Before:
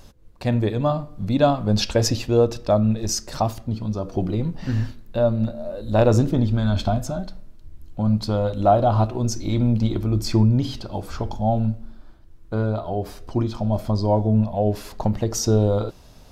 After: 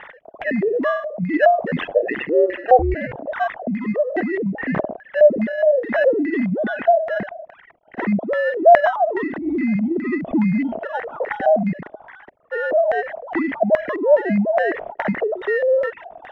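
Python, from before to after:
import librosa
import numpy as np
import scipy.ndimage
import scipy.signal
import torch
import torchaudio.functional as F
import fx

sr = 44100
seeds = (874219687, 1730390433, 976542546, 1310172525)

p1 = fx.sine_speech(x, sr)
p2 = fx.sample_hold(p1, sr, seeds[0], rate_hz=2300.0, jitter_pct=0)
p3 = p1 + (p2 * librosa.db_to_amplitude(-6.5))
p4 = fx.filter_lfo_lowpass(p3, sr, shape='square', hz=2.4, low_hz=650.0, high_hz=1900.0, q=7.7)
p5 = fx.ring_mod(p4, sr, carrier_hz=fx.line((1.62, 35.0), (3.16, 200.0)), at=(1.62, 3.16), fade=0.02)
p6 = fx.env_flatten(p5, sr, amount_pct=50)
y = p6 * librosa.db_to_amplitude(-15.5)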